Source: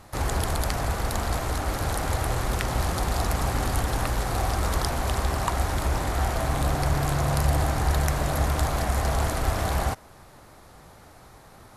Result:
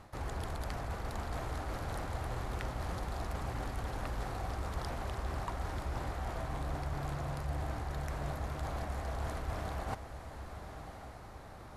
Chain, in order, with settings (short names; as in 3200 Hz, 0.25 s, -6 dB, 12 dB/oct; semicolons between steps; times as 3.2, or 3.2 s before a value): high shelf 5300 Hz -11 dB; reverse; compressor 6:1, threshold -33 dBFS, peak gain reduction 14.5 dB; reverse; diffused feedback echo 1.074 s, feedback 40%, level -9.5 dB; gain -2.5 dB